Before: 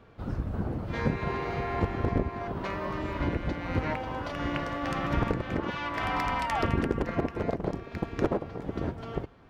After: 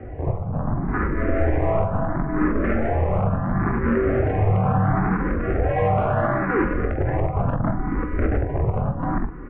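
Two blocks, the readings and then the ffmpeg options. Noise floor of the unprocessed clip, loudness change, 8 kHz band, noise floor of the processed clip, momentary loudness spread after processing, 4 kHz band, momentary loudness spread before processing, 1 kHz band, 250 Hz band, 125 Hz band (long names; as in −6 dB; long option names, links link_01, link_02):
−45 dBFS, +8.5 dB, below −25 dB, −29 dBFS, 5 LU, below −10 dB, 6 LU, +6.5 dB, +8.0 dB, +11.0 dB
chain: -filter_complex "[0:a]tiltshelf=frequency=1200:gain=8.5,acompressor=threshold=-26dB:ratio=3,volume=29dB,asoftclip=hard,volume=-29dB,bandreject=frequency=1300:width=11,aeval=exprs='0.0631*sin(PI/2*1.58*val(0)/0.0631)':channel_layout=same,asplit=2[link_01][link_02];[link_02]aecho=0:1:21|45:0.335|0.316[link_03];[link_01][link_03]amix=inputs=2:normalize=0,highpass=frequency=330:width_type=q:width=0.5412,highpass=frequency=330:width_type=q:width=1.307,lowpass=frequency=2500:width_type=q:width=0.5176,lowpass=frequency=2500:width_type=q:width=0.7071,lowpass=frequency=2500:width_type=q:width=1.932,afreqshift=-390,alimiter=level_in=23dB:limit=-1dB:release=50:level=0:latency=1,asplit=2[link_04][link_05];[link_05]afreqshift=0.72[link_06];[link_04][link_06]amix=inputs=2:normalize=1,volume=-8dB"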